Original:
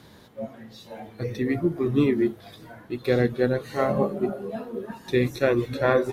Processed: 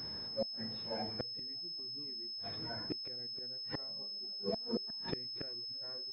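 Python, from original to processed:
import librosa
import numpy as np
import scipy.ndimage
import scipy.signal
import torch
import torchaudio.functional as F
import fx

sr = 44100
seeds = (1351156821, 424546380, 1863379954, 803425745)

y = fx.gate_flip(x, sr, shuts_db=-24.0, range_db=-33)
y = fx.pwm(y, sr, carrier_hz=5200.0)
y = y * 10.0 ** (-1.0 / 20.0)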